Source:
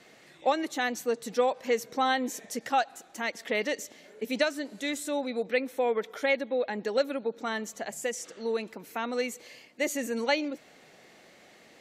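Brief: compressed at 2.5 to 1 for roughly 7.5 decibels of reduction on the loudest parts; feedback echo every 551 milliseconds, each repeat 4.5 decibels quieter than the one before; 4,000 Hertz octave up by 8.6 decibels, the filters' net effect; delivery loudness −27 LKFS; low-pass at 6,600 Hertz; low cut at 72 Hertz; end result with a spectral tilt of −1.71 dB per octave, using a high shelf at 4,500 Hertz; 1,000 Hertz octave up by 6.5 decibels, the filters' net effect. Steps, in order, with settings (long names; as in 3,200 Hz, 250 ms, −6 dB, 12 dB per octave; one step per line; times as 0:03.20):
high-pass filter 72 Hz
low-pass filter 6,600 Hz
parametric band 1,000 Hz +8.5 dB
parametric band 4,000 Hz +8 dB
high-shelf EQ 4,500 Hz +4.5 dB
downward compressor 2.5 to 1, threshold −27 dBFS
repeating echo 551 ms, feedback 60%, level −4.5 dB
level +3 dB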